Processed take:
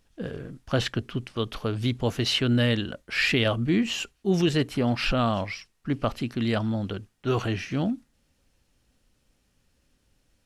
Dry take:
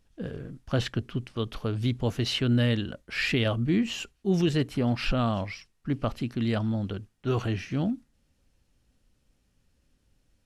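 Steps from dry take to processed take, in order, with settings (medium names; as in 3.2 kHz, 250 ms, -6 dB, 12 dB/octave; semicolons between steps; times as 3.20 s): bass shelf 280 Hz -5.5 dB; trim +4.5 dB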